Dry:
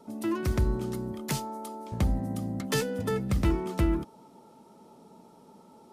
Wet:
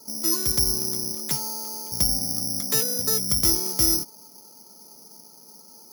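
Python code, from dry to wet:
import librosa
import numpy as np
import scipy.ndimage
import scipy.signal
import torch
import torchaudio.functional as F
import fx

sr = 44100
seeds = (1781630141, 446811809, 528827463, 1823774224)

y = fx.low_shelf(x, sr, hz=92.0, db=-7.5)
y = (np.kron(scipy.signal.resample_poly(y, 1, 8), np.eye(8)[0]) * 8)[:len(y)]
y = y * 10.0 ** (-2.5 / 20.0)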